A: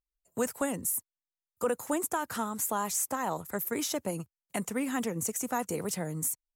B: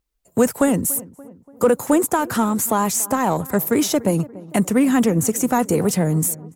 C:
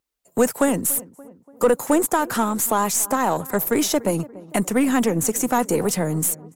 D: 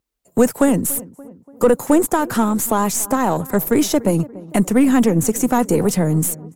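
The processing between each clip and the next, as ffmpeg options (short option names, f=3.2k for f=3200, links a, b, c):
-filter_complex "[0:a]asplit=2[a][b];[b]adelay=288,lowpass=f=1.3k:p=1,volume=-20dB,asplit=2[c][d];[d]adelay=288,lowpass=f=1.3k:p=1,volume=0.53,asplit=2[e][f];[f]adelay=288,lowpass=f=1.3k:p=1,volume=0.53,asplit=2[g][h];[h]adelay=288,lowpass=f=1.3k:p=1,volume=0.53[i];[a][c][e][g][i]amix=inputs=5:normalize=0,asplit=2[j][k];[k]asoftclip=type=tanh:threshold=-35dB,volume=-5.5dB[l];[j][l]amix=inputs=2:normalize=0,equalizer=f=180:w=0.31:g=7.5,volume=7.5dB"
-af "highpass=f=270:p=1,aeval=exprs='0.473*(cos(1*acos(clip(val(0)/0.473,-1,1)))-cos(1*PI/2))+0.0168*(cos(6*acos(clip(val(0)/0.473,-1,1)))-cos(6*PI/2))':c=same"
-af "lowshelf=f=360:g=9"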